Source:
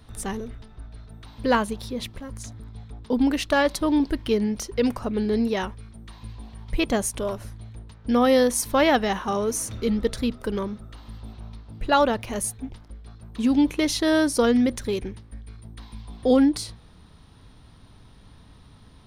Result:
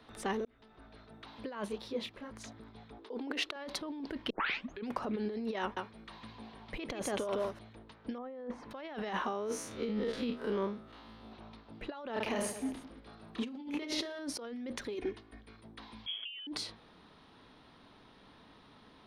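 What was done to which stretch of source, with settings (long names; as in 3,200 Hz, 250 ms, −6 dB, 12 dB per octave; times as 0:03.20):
0:00.45–0:00.88: fade in
0:01.68–0:02.31: micro pitch shift up and down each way 37 cents
0:02.98–0:03.56: low shelf with overshoot 250 Hz −11.5 dB, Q 3
0:04.30: tape start 0.58 s
0:05.61–0:07.59: single-tap delay 155 ms −6 dB
0:08.18–0:08.71: low-pass filter 1,300 Hz
0:09.26–0:11.32: spectrum smeared in time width 84 ms
0:12.13–0:14.19: reverse bouncing-ball delay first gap 30 ms, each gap 1.4×, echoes 5
0:14.94–0:15.41: comb filter 2.8 ms
0:16.06–0:16.47: voice inversion scrambler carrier 3,300 Hz
whole clip: three-way crossover with the lows and the highs turned down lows −20 dB, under 220 Hz, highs −16 dB, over 4,600 Hz; compressor whose output falls as the input rises −31 dBFS, ratio −1; level −7 dB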